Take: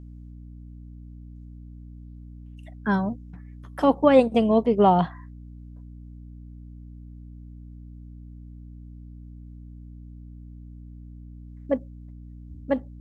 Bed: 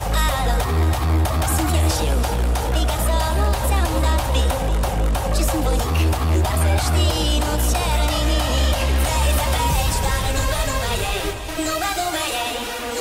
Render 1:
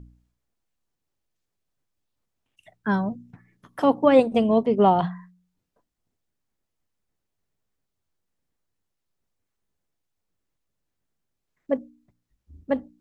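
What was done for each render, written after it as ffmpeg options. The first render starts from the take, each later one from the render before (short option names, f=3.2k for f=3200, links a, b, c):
-af "bandreject=f=60:t=h:w=4,bandreject=f=120:t=h:w=4,bandreject=f=180:t=h:w=4,bandreject=f=240:t=h:w=4,bandreject=f=300:t=h:w=4"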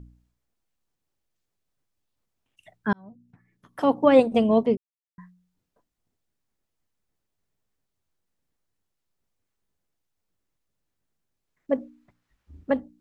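-filter_complex "[0:a]asplit=3[a][b][c];[a]afade=t=out:st=11.77:d=0.02[d];[b]equalizer=f=1.5k:w=0.41:g=12.5,afade=t=in:st=11.77:d=0.02,afade=t=out:st=12.7:d=0.02[e];[c]afade=t=in:st=12.7:d=0.02[f];[d][e][f]amix=inputs=3:normalize=0,asplit=4[g][h][i][j];[g]atrim=end=2.93,asetpts=PTS-STARTPTS,afade=t=out:st=2.926:d=0.004:c=hsin[k];[h]atrim=start=2.93:end=4.77,asetpts=PTS-STARTPTS,afade=t=in:d=1.17,afade=t=out:st=1.836:d=0.004:c=hsin[l];[i]atrim=start=4.77:end=5.18,asetpts=PTS-STARTPTS,volume=0[m];[j]atrim=start=5.18,asetpts=PTS-STARTPTS,afade=t=in:d=0.004:c=hsin[n];[k][l][m][n]concat=n=4:v=0:a=1"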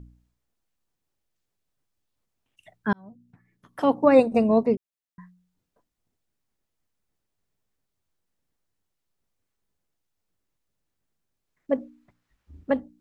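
-filter_complex "[0:a]asettb=1/sr,asplit=3[a][b][c];[a]atrim=end=3.954[d];[b]atrim=start=3.95:end=4.74,asetpts=PTS-STARTPTS,afade=t=in:d=0.004:c=qsin,afade=t=out:st=0.786:d=0.004:c=qsin,asuperstop=centerf=3200:order=20:qfactor=4.2[e];[c]atrim=start=4.736[f];[d][e]acrossfade=d=0.004:c1=hsin:c2=qsin[g];[g][f]acrossfade=d=0.004:c1=qsin:c2=hsin"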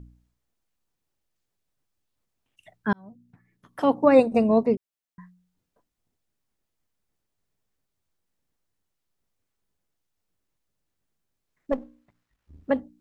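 -filter_complex "[0:a]asettb=1/sr,asplit=3[a][b][c];[a]atrim=end=11.724[d];[b]atrim=start=11.72:end=12.64,asetpts=PTS-STARTPTS,afade=t=in:d=0.004:c=qsin,afade=t=out:st=0.916:d=0.004:c=qsin,aeval=exprs='if(lt(val(0),0),0.447*val(0),val(0))':c=same[e];[c]atrim=start=12.636[f];[d][e]acrossfade=d=0.004:c1=hsin:c2=qsin[g];[g][f]acrossfade=d=0.004:c1=qsin:c2=hsin"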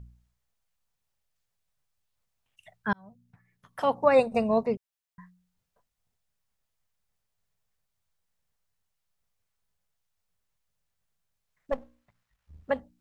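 -af "equalizer=f=300:t=o:w=0.87:g=-14.5"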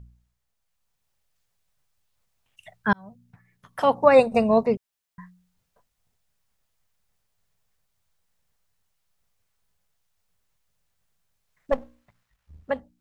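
-af "dynaudnorm=f=130:g=13:m=6.5dB"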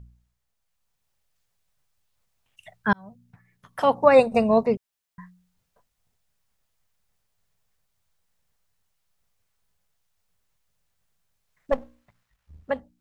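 -af anull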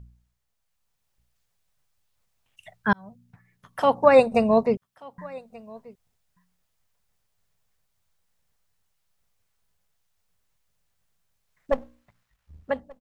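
-af "aecho=1:1:1183:0.0668"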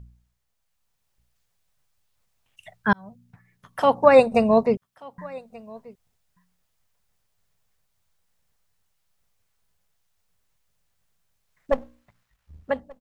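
-af "volume=1.5dB"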